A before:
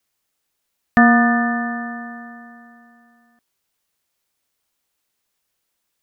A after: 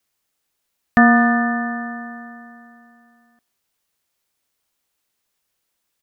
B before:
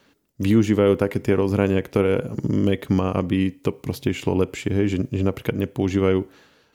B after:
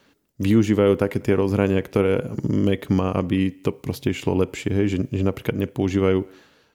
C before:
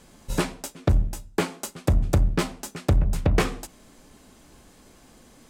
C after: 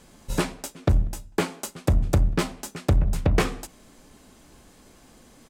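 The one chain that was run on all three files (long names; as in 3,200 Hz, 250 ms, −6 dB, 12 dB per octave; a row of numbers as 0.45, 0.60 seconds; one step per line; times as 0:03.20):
far-end echo of a speakerphone 190 ms, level −29 dB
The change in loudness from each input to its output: 0.0, 0.0, 0.0 LU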